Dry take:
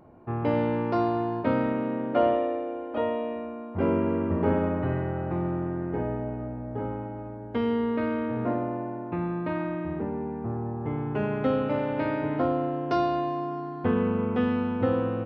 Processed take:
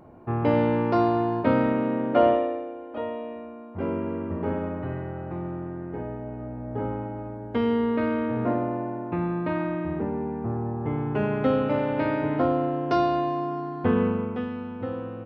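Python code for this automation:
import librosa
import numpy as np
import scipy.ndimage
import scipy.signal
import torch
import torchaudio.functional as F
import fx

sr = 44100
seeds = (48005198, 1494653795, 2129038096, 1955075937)

y = fx.gain(x, sr, db=fx.line((2.3, 3.5), (2.75, -4.0), (6.2, -4.0), (6.8, 2.5), (14.04, 2.5), (14.49, -7.0)))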